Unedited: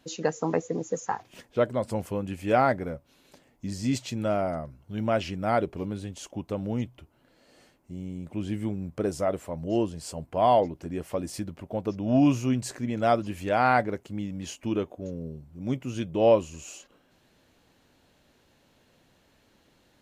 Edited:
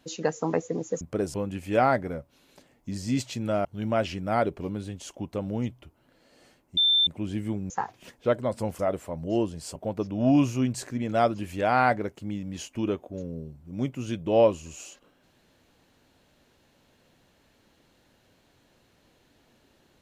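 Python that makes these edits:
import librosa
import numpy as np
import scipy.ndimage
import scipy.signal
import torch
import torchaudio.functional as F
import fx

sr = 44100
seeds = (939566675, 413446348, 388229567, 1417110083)

y = fx.edit(x, sr, fx.swap(start_s=1.01, length_s=1.09, other_s=8.86, other_length_s=0.33),
    fx.cut(start_s=4.41, length_s=0.4),
    fx.bleep(start_s=7.93, length_s=0.3, hz=3560.0, db=-18.0),
    fx.cut(start_s=10.16, length_s=1.48), tone=tone)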